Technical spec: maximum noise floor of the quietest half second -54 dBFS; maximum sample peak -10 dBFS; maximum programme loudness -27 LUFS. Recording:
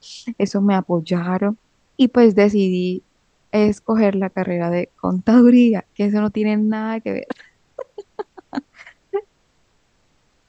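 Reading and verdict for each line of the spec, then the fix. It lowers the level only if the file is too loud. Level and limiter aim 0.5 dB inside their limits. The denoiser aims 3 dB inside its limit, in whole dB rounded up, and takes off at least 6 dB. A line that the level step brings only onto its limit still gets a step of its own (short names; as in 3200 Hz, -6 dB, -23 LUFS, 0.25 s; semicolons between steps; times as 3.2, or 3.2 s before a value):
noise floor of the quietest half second -62 dBFS: OK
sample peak -1.5 dBFS: fail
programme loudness -18.0 LUFS: fail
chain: gain -9.5 dB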